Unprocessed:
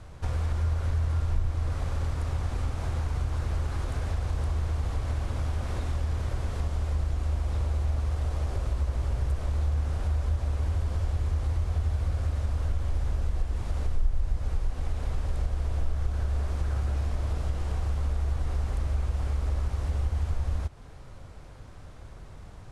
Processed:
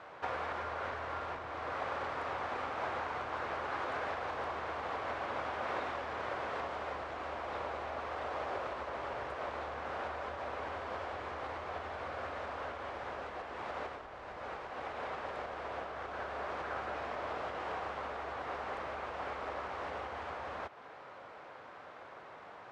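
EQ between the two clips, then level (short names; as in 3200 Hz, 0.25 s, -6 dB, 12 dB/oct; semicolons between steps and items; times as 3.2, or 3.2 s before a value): BPF 600–2200 Hz; +7.5 dB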